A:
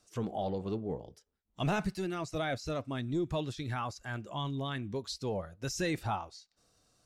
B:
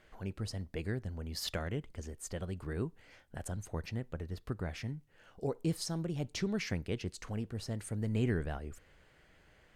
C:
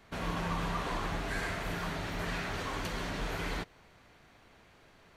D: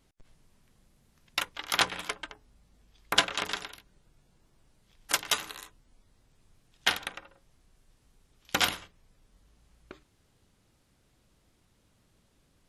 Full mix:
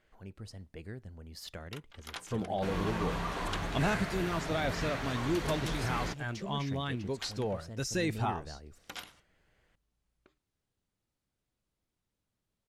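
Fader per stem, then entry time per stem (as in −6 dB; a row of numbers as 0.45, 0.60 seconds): +1.0, −7.5, −1.0, −18.0 decibels; 2.15, 0.00, 2.50, 0.35 seconds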